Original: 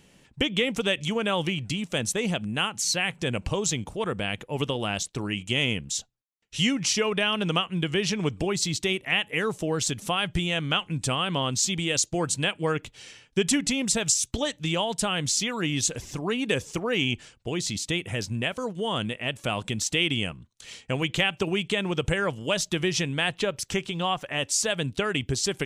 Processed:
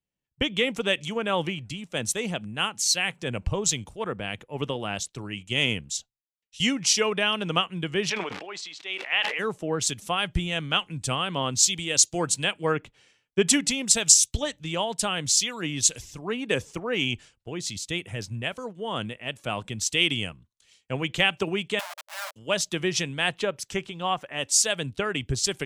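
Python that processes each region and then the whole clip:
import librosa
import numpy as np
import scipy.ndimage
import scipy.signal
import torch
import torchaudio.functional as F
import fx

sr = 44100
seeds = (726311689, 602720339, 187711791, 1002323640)

y = fx.chain(x, sr, fx.high_shelf(hz=5400.0, db=-4.0),
    fx.band_squash(depth_pct=70), at=(5.96, 6.6))
y = fx.dmg_crackle(y, sr, seeds[0], per_s=300.0, level_db=-39.0, at=(8.09, 9.38), fade=0.02)
y = fx.bandpass_edges(y, sr, low_hz=630.0, high_hz=3300.0, at=(8.09, 9.38), fade=0.02)
y = fx.sustainer(y, sr, db_per_s=25.0, at=(8.09, 9.38), fade=0.02)
y = fx.chain(y, sr, fx.high_shelf(hz=3600.0, db=5.5),
    fx.schmitt(flips_db=-28.5),
    fx.brickwall_highpass(low_hz=570.0), at=(21.79, 22.36))
y = fx.low_shelf(y, sr, hz=330.0, db=-3.0)
y = fx.band_widen(y, sr, depth_pct=100)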